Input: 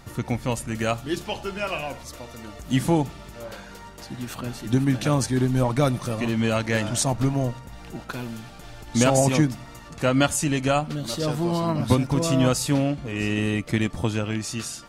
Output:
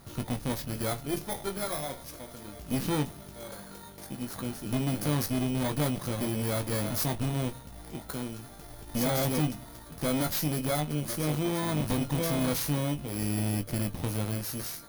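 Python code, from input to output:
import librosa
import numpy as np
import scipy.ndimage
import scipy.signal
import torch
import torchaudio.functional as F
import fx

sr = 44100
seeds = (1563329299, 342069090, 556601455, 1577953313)

y = fx.bit_reversed(x, sr, seeds[0], block=16)
y = fx.tube_stage(y, sr, drive_db=25.0, bias=0.75)
y = fx.hum_notches(y, sr, base_hz=50, count=2)
y = fx.doubler(y, sr, ms=20.0, db=-8.0)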